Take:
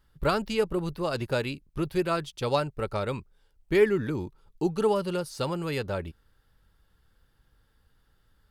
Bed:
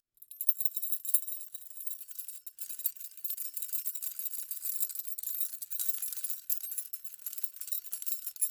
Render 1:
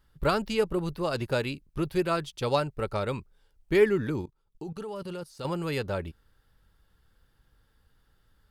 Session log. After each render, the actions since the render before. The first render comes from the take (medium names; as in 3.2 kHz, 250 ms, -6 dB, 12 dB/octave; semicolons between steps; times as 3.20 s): 4.21–5.45 s: level held to a coarse grid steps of 18 dB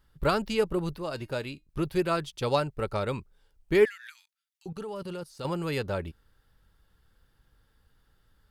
0.98–1.69 s: feedback comb 310 Hz, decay 0.19 s, mix 50%; 3.85–4.66 s: steep high-pass 1.6 kHz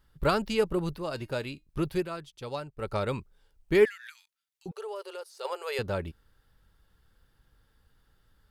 1.93–2.92 s: dip -10 dB, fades 0.16 s; 4.71–5.79 s: brick-wall FIR high-pass 370 Hz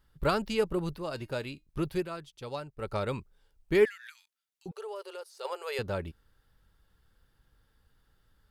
trim -2 dB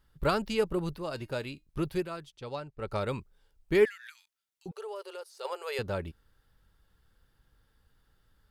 2.32–2.91 s: distance through air 56 m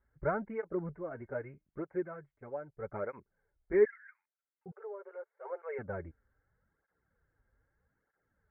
rippled Chebyshev low-pass 2.2 kHz, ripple 6 dB; cancelling through-zero flanger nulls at 0.8 Hz, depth 6.8 ms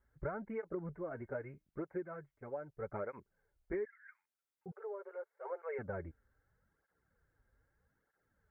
compression 10:1, threshold -36 dBFS, peak gain reduction 16.5 dB